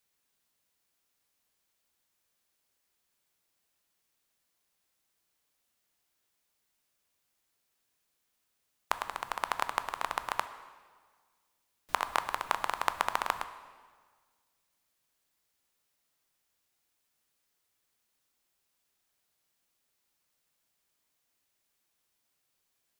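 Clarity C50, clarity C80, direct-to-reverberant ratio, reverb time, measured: 12.5 dB, 13.5 dB, 10.5 dB, 1.6 s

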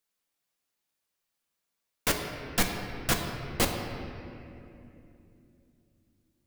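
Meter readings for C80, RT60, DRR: 5.5 dB, 2.8 s, 2.0 dB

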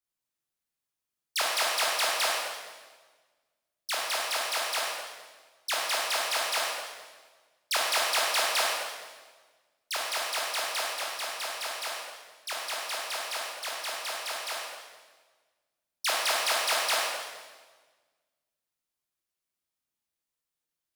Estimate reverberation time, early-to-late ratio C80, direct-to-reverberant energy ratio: 1.4 s, 1.5 dB, −3.5 dB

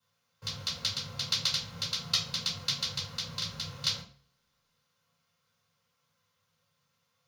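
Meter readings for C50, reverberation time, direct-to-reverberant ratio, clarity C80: 9.0 dB, 0.45 s, −8.0 dB, 13.5 dB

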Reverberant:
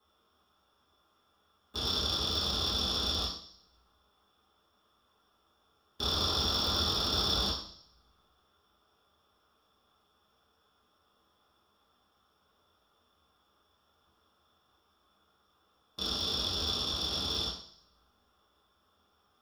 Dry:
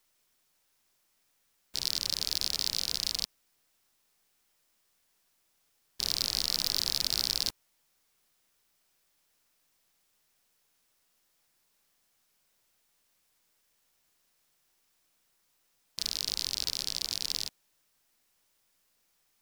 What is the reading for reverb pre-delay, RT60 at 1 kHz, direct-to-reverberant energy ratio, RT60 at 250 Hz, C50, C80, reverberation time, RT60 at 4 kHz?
3 ms, 0.55 s, −10.5 dB, 0.60 s, 5.0 dB, 9.0 dB, 0.60 s, 0.65 s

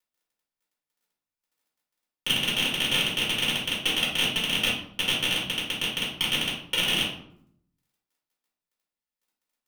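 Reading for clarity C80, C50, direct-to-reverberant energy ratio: 8.5 dB, 3.5 dB, −9.0 dB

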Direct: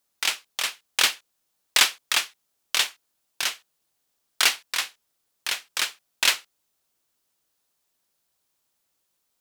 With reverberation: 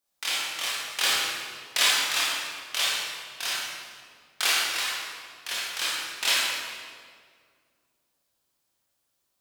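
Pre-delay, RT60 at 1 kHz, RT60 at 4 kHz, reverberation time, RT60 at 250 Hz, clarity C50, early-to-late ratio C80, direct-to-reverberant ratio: 19 ms, 1.8 s, 1.4 s, 1.9 s, 2.4 s, −3.0 dB, −0.5 dB, −7.5 dB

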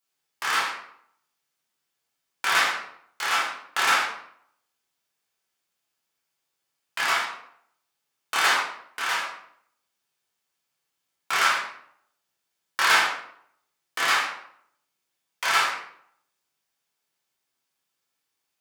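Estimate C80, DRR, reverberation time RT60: 7.0 dB, −6.5 dB, 0.65 s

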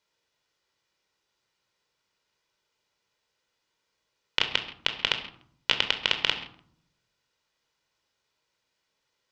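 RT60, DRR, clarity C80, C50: 0.60 s, 6.0 dB, 12.5 dB, 10.0 dB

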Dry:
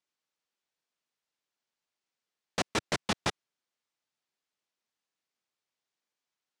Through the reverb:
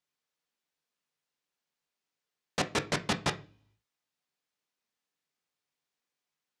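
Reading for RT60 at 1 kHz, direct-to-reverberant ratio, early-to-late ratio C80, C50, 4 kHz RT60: 0.40 s, 7.0 dB, 22.5 dB, 16.0 dB, 0.60 s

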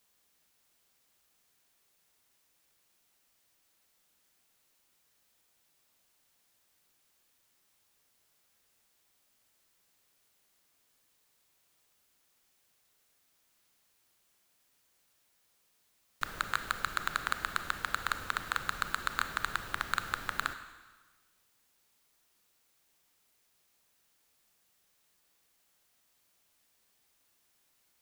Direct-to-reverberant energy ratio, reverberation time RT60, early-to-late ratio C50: 9.0 dB, 1.4 s, 10.5 dB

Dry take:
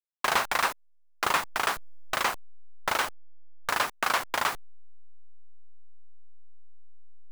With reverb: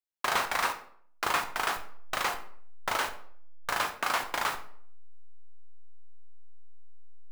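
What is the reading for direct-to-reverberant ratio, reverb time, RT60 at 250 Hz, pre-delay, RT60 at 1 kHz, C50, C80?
6.0 dB, 0.55 s, 0.65 s, 15 ms, 0.55 s, 10.5 dB, 14.5 dB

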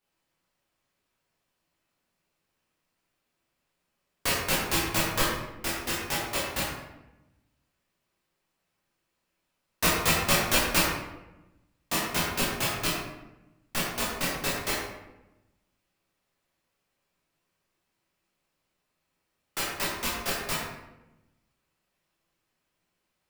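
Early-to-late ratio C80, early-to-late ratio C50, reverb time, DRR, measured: 3.0 dB, 1.0 dB, 0.95 s, −7.0 dB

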